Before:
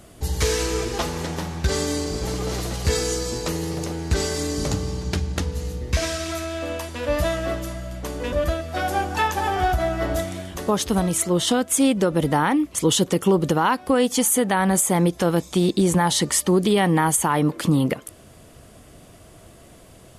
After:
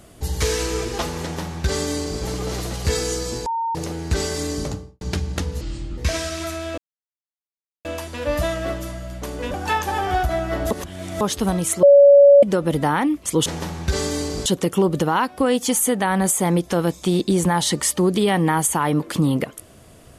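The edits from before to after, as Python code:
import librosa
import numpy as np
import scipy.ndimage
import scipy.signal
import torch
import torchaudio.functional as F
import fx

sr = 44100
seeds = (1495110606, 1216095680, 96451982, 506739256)

y = fx.studio_fade_out(x, sr, start_s=4.52, length_s=0.49)
y = fx.edit(y, sr, fx.duplicate(start_s=1.22, length_s=1.0, to_s=12.95),
    fx.bleep(start_s=3.46, length_s=0.29, hz=915.0, db=-20.5),
    fx.speed_span(start_s=5.61, length_s=0.25, speed=0.68),
    fx.insert_silence(at_s=6.66, length_s=1.07),
    fx.cut(start_s=8.35, length_s=0.68),
    fx.reverse_span(start_s=10.2, length_s=0.5),
    fx.bleep(start_s=11.32, length_s=0.6, hz=566.0, db=-6.0), tone=tone)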